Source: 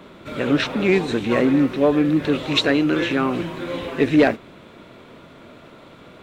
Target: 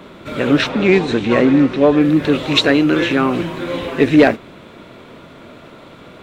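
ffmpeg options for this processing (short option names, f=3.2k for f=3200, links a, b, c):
-filter_complex "[0:a]asettb=1/sr,asplit=3[a][b][c];[a]atrim=end=0.694[d];[b]atrim=start=0.69:end=2.01,asetpts=PTS-STARTPTS,afade=t=in:d=0.004:c=qsin,afade=t=out:st=1.316:d=0.004:c=qsin,lowpass=6.9k[e];[c]atrim=start=2.006[f];[d][e]acrossfade=d=0.004:c1=hsin:c2=qsin[g];[g][f]acrossfade=d=0.004:c1=qsin:c2=hsin,volume=5dB"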